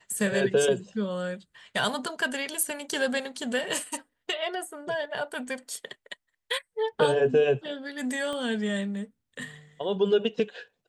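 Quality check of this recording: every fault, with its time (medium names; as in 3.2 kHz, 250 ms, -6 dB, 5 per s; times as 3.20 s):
8.33 s: pop -23 dBFS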